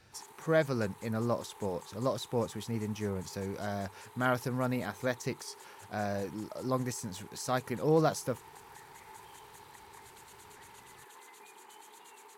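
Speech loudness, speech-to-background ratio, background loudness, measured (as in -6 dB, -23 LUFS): -34.0 LUFS, 18.5 dB, -52.5 LUFS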